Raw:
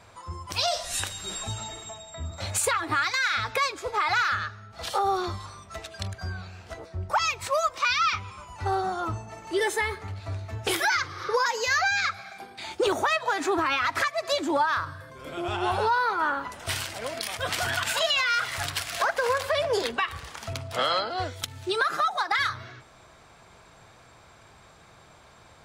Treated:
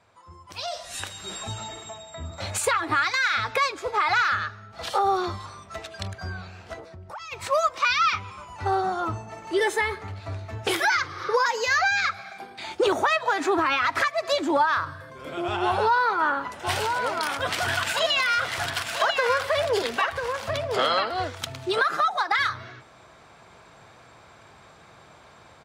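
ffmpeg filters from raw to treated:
ffmpeg -i in.wav -filter_complex "[0:a]asplit=3[link_01][link_02][link_03];[link_01]afade=type=out:start_time=6.79:duration=0.02[link_04];[link_02]acompressor=threshold=-41dB:ratio=4:attack=3.2:release=140:knee=1:detection=peak,afade=type=in:start_time=6.79:duration=0.02,afade=type=out:start_time=7.31:duration=0.02[link_05];[link_03]afade=type=in:start_time=7.31:duration=0.02[link_06];[link_04][link_05][link_06]amix=inputs=3:normalize=0,asplit=3[link_07][link_08][link_09];[link_07]afade=type=out:start_time=16.63:duration=0.02[link_10];[link_08]aecho=1:1:992:0.501,afade=type=in:start_time=16.63:duration=0.02,afade=type=out:start_time=21.79:duration=0.02[link_11];[link_09]afade=type=in:start_time=21.79:duration=0.02[link_12];[link_10][link_11][link_12]amix=inputs=3:normalize=0,highpass=frequency=110:poles=1,highshelf=frequency=5400:gain=-7,dynaudnorm=framelen=220:gausssize=9:maxgain=11.5dB,volume=-8dB" out.wav

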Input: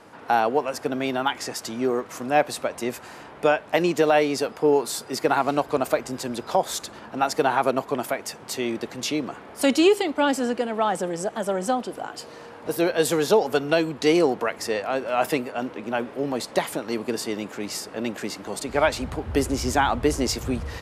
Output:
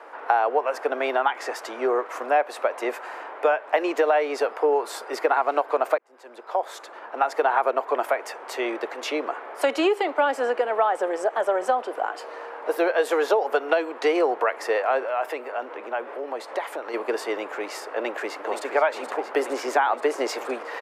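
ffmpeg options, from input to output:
ffmpeg -i in.wav -filter_complex "[0:a]asettb=1/sr,asplit=3[link_01][link_02][link_03];[link_01]atrim=end=15.054[link_04];[link_02]atrim=start=15.05:end=16.94,asetpts=PTS-STARTPTS,afade=type=in:duration=0.004:curve=qsin,afade=type=out:start_time=1.886:duration=0.004:curve=qsin,acompressor=threshold=-35dB:ratio=2:attack=3.2:release=140:knee=1:detection=peak[link_05];[link_03]atrim=start=16.936[link_06];[link_04][link_05]acrossfade=duration=0.004:curve1=hsin:curve2=qsin[link_07];[link_07][link_06]acrossfade=duration=0.004:curve1=qsin:curve2=hsin,asplit=2[link_08][link_09];[link_09]afade=type=in:start_time=17.97:duration=0.01,afade=type=out:start_time=18.65:duration=0.01,aecho=0:1:470|940|1410|1880|2350|2820|3290|3760|4230|4700|5170|5640:0.421697|0.337357|0.269886|0.215909|0.172727|0.138182|0.110545|0.0884362|0.0707489|0.0565991|0.0452793|0.0362235[link_10];[link_08][link_10]amix=inputs=2:normalize=0,asplit=2[link_11][link_12];[link_11]atrim=end=5.98,asetpts=PTS-STARTPTS,afade=type=out:start_time=5.976:duration=0.004:curve=hsin[link_13];[link_12]atrim=start=5.98,asetpts=PTS-STARTPTS,afade=type=in:duration=1.62[link_14];[link_13][link_14]concat=n=2:v=0:a=1,highpass=frequency=290:width=0.5412,highpass=frequency=290:width=1.3066,acrossover=split=410 2300:gain=0.0631 1 0.141[link_15][link_16][link_17];[link_15][link_16][link_17]amix=inputs=3:normalize=0,acompressor=threshold=-26dB:ratio=4,volume=8dB" out.wav

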